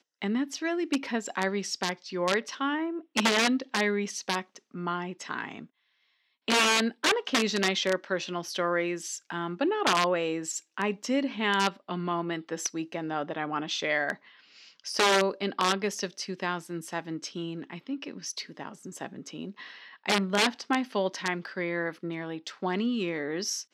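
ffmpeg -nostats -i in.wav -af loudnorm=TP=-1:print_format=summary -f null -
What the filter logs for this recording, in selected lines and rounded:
Input Integrated:    -29.3 LUFS
Input True Peak:      -9.7 dBTP
Input LRA:             4.6 LU
Input Threshold:     -39.8 LUFS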